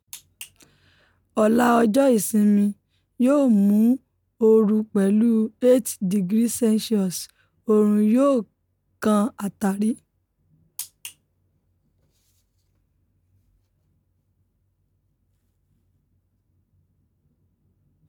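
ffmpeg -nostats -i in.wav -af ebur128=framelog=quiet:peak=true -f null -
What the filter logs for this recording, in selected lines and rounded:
Integrated loudness:
  I:         -20.3 LUFS
  Threshold: -33.2 LUFS
Loudness range:
  LRA:        14.0 LU
  Threshold: -43.4 LUFS
  LRA low:   -33.7 LUFS
  LRA high:  -19.6 LUFS
True peak:
  Peak:       -6.2 dBFS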